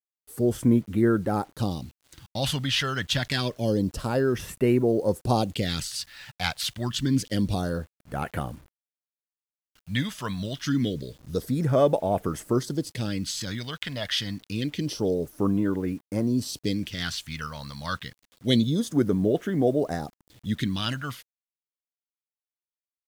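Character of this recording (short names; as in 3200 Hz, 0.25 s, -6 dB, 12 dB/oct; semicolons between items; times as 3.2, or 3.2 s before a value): phasing stages 2, 0.27 Hz, lowest notch 340–4400 Hz; a quantiser's noise floor 10-bit, dither none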